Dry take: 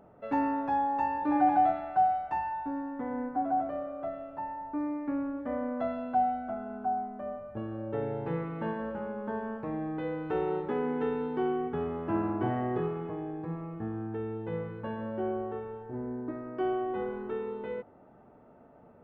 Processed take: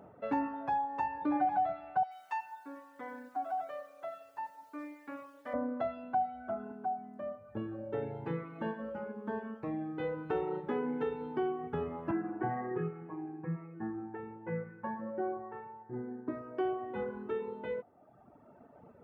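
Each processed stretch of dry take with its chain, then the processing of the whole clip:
0:02.03–0:05.54: high-pass filter 1,400 Hz 6 dB per octave + high-shelf EQ 2,900 Hz +8 dB + feedback echo at a low word length 84 ms, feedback 35%, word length 10 bits, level −10.5 dB
0:06.71–0:10.00: high-pass filter 130 Hz 6 dB per octave + dynamic equaliser 890 Hz, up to −4 dB, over −44 dBFS, Q 0.73
0:12.11–0:16.28: loudspeaker in its box 120–2,100 Hz, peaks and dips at 200 Hz −8 dB, 370 Hz −6 dB, 600 Hz −9 dB, 1,200 Hz −5 dB + comb filter 5.5 ms, depth 78%
whole clip: reverb reduction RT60 1.5 s; high-pass filter 63 Hz; downward compressor 2 to 1, threshold −35 dBFS; level +2.5 dB

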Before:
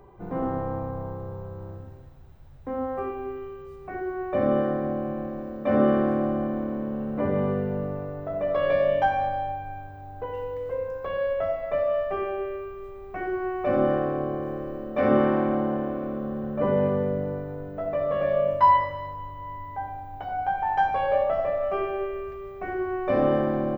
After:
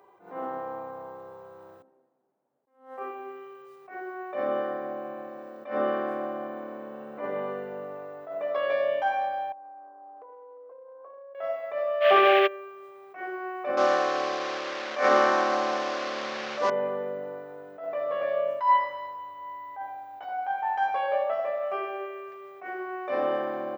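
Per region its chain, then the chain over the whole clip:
0:01.82–0:02.98: four-pole ladder high-pass 180 Hz, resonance 35% + high-shelf EQ 2,300 Hz +9.5 dB + low-pass that shuts in the quiet parts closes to 510 Hz, open at −33.5 dBFS
0:09.52–0:11.35: Chebyshev band-pass filter 280–1,200 Hz, order 3 + downward compressor 10 to 1, threshold −40 dBFS
0:12.00–0:12.46: noise in a band 1,500–3,200 Hz −45 dBFS + envelope flattener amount 100%
0:13.77–0:16.70: linear delta modulator 32 kbit/s, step −32 dBFS + parametric band 1,400 Hz +9 dB 2.6 octaves
whole clip: Bessel high-pass filter 660 Hz, order 2; level that may rise only so fast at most 140 dB per second

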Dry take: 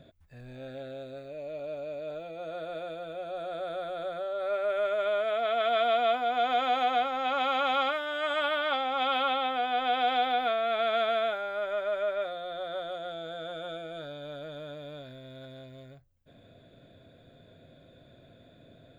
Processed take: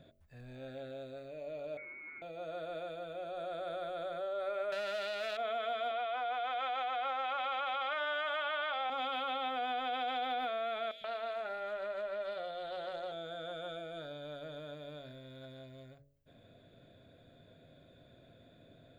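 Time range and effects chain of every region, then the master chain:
0:01.77–0:02.22: linear delta modulator 64 kbit/s, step −57.5 dBFS + high-pass filter 870 Hz + voice inversion scrambler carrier 2,800 Hz
0:04.72–0:05.37: converter with a step at zero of −39.5 dBFS + parametric band 3,800 Hz +13.5 dB 2.5 octaves + highs frequency-modulated by the lows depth 0.11 ms
0:05.91–0:08.90: band-pass filter 610–3,700 Hz + envelope flattener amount 100%
0:10.91–0:13.12: downward compressor 10 to 1, threshold −30 dBFS + three-band delay without the direct sound highs, lows, mids 100/130 ms, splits 220/2,700 Hz + highs frequency-modulated by the lows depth 0.1 ms
whole clip: brickwall limiter −25 dBFS; hum removal 46.75 Hz, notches 14; level −4 dB

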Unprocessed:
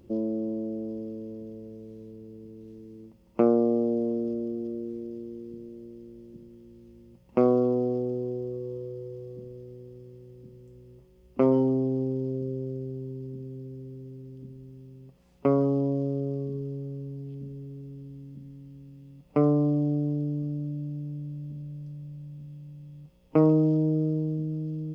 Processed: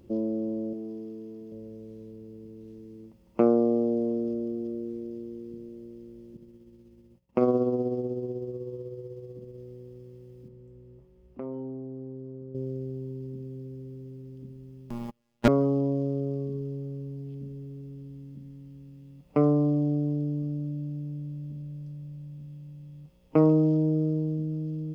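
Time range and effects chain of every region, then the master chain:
0:00.73–0:01.52: high-pass filter 250 Hz 6 dB per octave + notch filter 560 Hz, Q 6.6
0:06.37–0:09.58: downward expander −50 dBFS + amplitude tremolo 16 Hz, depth 40%
0:10.48–0:12.55: high-shelf EQ 2,500 Hz −12 dB + downward compressor 2 to 1, threshold −45 dBFS
0:14.90–0:15.48: leveller curve on the samples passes 5 + phases set to zero 118 Hz + comb filter 4.9 ms, depth 54%
whole clip: no processing

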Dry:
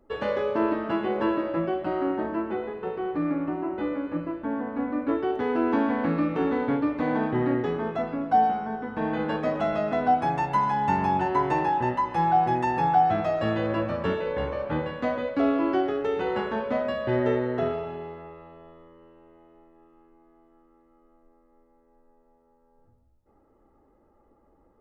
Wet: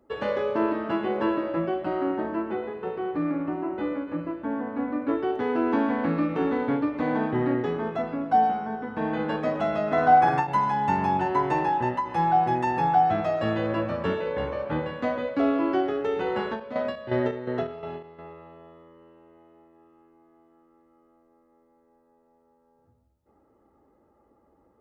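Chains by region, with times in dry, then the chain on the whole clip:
0:09.86–0:10.47: dynamic equaliser 1,400 Hz, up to +6 dB, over −36 dBFS, Q 0.98 + flutter between parallel walls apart 8.7 metres, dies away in 0.66 s
0:16.40–0:18.33: parametric band 4,200 Hz +4.5 dB 0.68 octaves + square-wave tremolo 2.8 Hz, depth 65%, duty 55%
whole clip: high-pass filter 67 Hz; every ending faded ahead of time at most 140 dB per second

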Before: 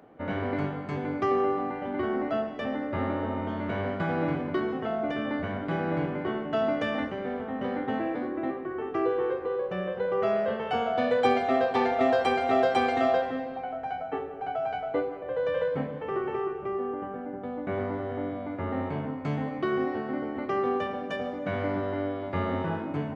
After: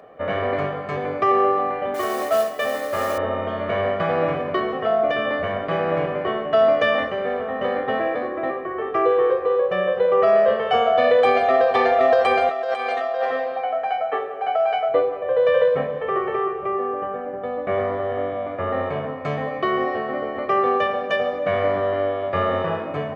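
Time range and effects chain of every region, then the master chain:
0:01.94–0:03.18: low-shelf EQ 250 Hz −9 dB + noise that follows the level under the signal 13 dB
0:12.49–0:14.89: high-pass filter 570 Hz 6 dB per octave + compressor whose output falls as the input rises −32 dBFS
whole clip: bass and treble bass −10 dB, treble −6 dB; comb filter 1.7 ms, depth 61%; boost into a limiter +15.5 dB; level −7 dB

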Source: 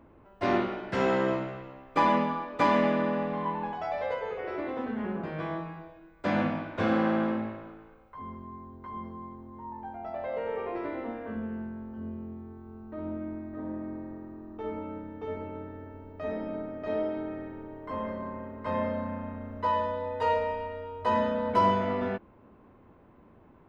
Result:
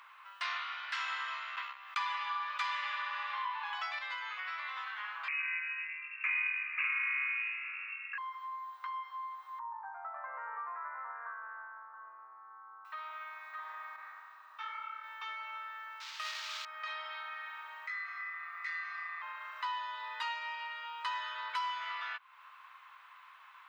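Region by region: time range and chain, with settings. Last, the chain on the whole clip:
0:01.56–0:03.99: noise gate −43 dBFS, range −32 dB + envelope flattener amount 50%
0:05.28–0:08.18: double-tracking delay 44 ms −3.5 dB + voice inversion scrambler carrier 2,700 Hz
0:09.59–0:12.85: Butterworth low-pass 1,600 Hz + spectral tilt −3 dB per octave
0:13.96–0:15.04: dynamic equaliser 1,400 Hz, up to +5 dB, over −59 dBFS, Q 2 + micro pitch shift up and down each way 45 cents
0:16.00–0:16.65: noise that follows the level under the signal 13 dB + linearly interpolated sample-rate reduction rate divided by 4×
0:17.87–0:19.22: low-shelf EQ 390 Hz −9 dB + phaser with its sweep stopped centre 550 Hz, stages 6 + ring modulation 950 Hz
whole clip: elliptic high-pass filter 1,100 Hz, stop band 80 dB; parametric band 3,800 Hz +7 dB 1.4 octaves; downward compressor 3 to 1, threshold −53 dBFS; level +12 dB

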